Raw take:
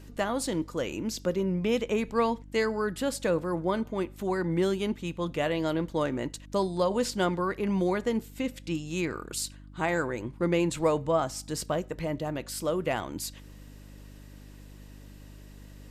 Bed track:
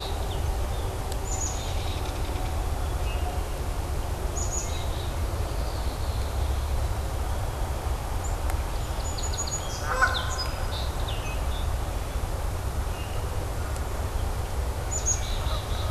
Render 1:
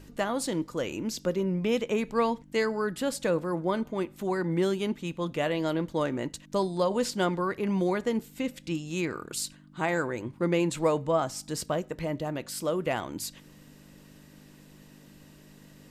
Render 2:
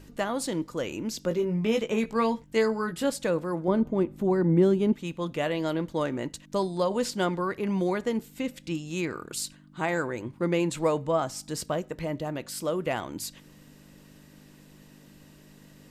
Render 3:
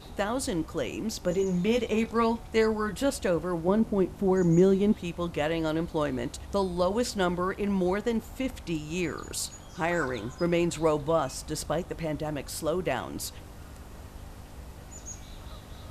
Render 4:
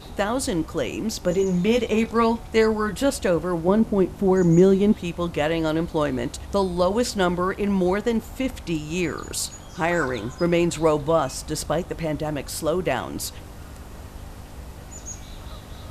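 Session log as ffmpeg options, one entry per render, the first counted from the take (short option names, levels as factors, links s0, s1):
-af "bandreject=f=50:t=h:w=4,bandreject=f=100:t=h:w=4"
-filter_complex "[0:a]asettb=1/sr,asplit=3[s0][s1][s2];[s0]atrim=end=1.294[s3];[s1]atrim=start=1.29:end=3.1,asetpts=PTS-STARTPTS,afade=t=in:d=0.004:c=qsin,afade=t=out:st=1.806:d=0.004:c=qsin,asplit=2[s4][s5];[s5]adelay=18,volume=0.562[s6];[s4][s6]amix=inputs=2:normalize=0,atrim=end_sample=79821[s7];[s2]atrim=start=3.096[s8];[s3][s7]acrossfade=d=0.004:c1=hsin:c2=qsin[s9];[s9][s8]acrossfade=d=0.004:c1=qsin:c2=hsin,asettb=1/sr,asplit=3[s10][s11][s12];[s10]atrim=end=3.684[s13];[s11]atrim=start=3.68:end=4.93,asetpts=PTS-STARTPTS,afade=t=in:d=0.004:c=qsin,afade=t=out:st=1.246:d=0.004:c=qsin,tiltshelf=f=860:g=8[s14];[s12]atrim=start=4.926[s15];[s13][s14]acrossfade=d=0.004:c1=hsin:c2=qsin[s16];[s16][s15]acrossfade=d=0.004:c1=qsin:c2=hsin"
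-filter_complex "[1:a]volume=0.158[s0];[0:a][s0]amix=inputs=2:normalize=0"
-af "volume=1.88"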